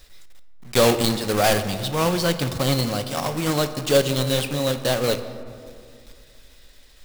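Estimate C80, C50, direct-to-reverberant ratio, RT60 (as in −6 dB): 12.5 dB, 11.0 dB, 9.0 dB, 2.3 s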